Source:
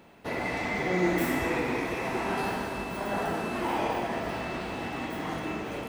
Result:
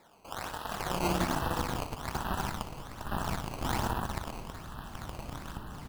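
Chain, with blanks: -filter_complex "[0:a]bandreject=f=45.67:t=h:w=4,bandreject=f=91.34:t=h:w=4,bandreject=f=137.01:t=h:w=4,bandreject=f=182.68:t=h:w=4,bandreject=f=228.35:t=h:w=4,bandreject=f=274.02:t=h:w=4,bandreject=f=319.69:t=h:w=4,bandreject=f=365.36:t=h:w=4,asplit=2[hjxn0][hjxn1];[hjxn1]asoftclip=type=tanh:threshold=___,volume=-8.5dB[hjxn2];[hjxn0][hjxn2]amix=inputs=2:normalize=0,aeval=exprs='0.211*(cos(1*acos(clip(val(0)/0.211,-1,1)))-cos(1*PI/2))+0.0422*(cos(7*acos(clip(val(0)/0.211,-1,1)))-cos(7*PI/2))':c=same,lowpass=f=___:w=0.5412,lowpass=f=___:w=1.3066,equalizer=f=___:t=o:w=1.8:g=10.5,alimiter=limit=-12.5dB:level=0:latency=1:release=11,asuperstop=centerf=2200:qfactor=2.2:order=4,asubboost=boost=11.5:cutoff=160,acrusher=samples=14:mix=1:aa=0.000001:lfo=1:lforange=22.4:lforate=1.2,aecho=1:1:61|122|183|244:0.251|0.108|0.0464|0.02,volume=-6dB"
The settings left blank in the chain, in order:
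-32dB, 5700, 5700, 950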